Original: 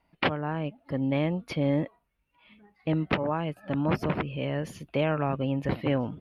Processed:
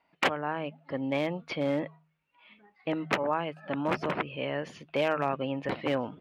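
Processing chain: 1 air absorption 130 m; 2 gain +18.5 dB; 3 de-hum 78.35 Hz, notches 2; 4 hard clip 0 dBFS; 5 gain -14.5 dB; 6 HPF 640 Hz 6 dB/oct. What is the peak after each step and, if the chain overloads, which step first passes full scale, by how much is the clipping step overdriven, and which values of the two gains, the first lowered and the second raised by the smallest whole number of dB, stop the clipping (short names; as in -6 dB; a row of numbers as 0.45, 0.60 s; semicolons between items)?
-12.5, +6.0, +6.0, 0.0, -14.5, -11.5 dBFS; step 2, 6.0 dB; step 2 +12.5 dB, step 5 -8.5 dB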